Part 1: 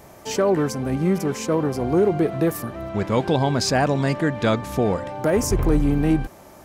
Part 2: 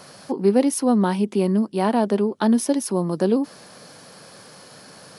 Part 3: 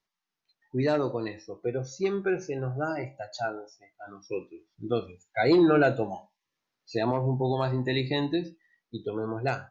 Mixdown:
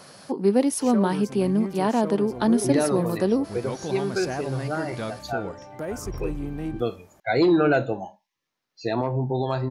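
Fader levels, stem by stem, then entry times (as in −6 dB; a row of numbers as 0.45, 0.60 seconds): −12.0, −2.5, +1.5 decibels; 0.55, 0.00, 1.90 seconds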